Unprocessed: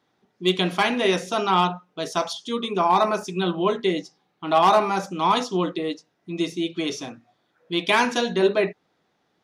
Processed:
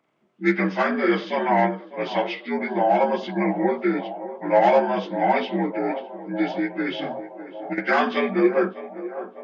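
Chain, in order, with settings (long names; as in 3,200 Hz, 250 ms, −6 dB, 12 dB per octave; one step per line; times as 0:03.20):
partials spread apart or drawn together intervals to 81%
on a send: feedback echo with a band-pass in the loop 603 ms, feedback 78%, band-pass 600 Hz, level −12.5 dB
0:06.98–0:07.78: on the sum: compressor whose output falls as the input rises −26 dBFS, ratio −0.5
level +1.5 dB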